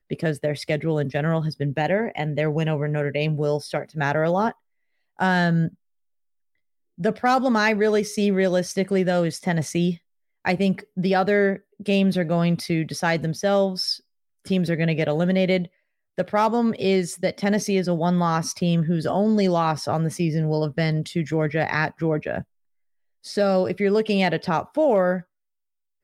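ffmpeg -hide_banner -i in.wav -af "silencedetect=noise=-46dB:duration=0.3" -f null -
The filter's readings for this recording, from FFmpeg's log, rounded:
silence_start: 4.53
silence_end: 5.19 | silence_duration: 0.66
silence_start: 5.74
silence_end: 6.98 | silence_duration: 1.24
silence_start: 9.97
silence_end: 10.45 | silence_duration: 0.47
silence_start: 13.99
silence_end: 14.45 | silence_duration: 0.47
silence_start: 15.67
silence_end: 16.18 | silence_duration: 0.51
silence_start: 22.43
silence_end: 23.24 | silence_duration: 0.80
silence_start: 25.22
silence_end: 26.03 | silence_duration: 0.81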